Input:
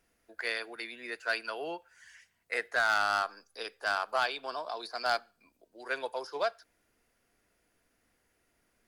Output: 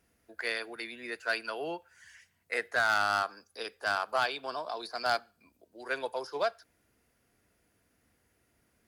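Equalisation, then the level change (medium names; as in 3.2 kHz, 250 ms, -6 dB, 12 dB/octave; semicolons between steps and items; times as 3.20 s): high-pass 73 Hz; bass shelf 180 Hz +11.5 dB; peaking EQ 13 kHz +3.5 dB 0.65 oct; 0.0 dB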